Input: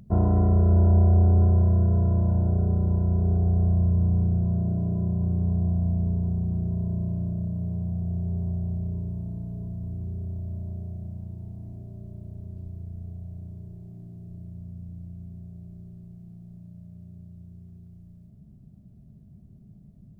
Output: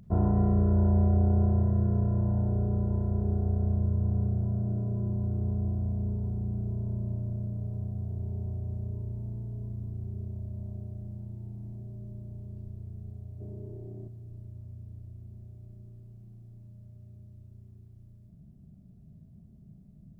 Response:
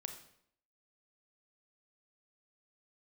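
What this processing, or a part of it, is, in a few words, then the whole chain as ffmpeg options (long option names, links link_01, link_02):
bathroom: -filter_complex "[1:a]atrim=start_sample=2205[link_01];[0:a][link_01]afir=irnorm=-1:irlink=0,asettb=1/sr,asplit=3[link_02][link_03][link_04];[link_02]atrim=end=13.404[link_05];[link_03]atrim=start=13.4:end=14.08,asetpts=PTS-STARTPTS,afade=type=in:duration=0.004:curve=qsin,afade=type=out:start_time=0.676:duration=0.004:curve=qsin,equalizer=frequency=430:width_type=o:width=1.8:gain=14.5[link_06];[link_04]atrim=start=14.076[link_07];[link_05][link_06]acrossfade=duration=0.004:curve1=hsin:curve2=qsin[link_08];[link_08][link_07]acrossfade=duration=0.004:curve1=qsin:curve2=hsin"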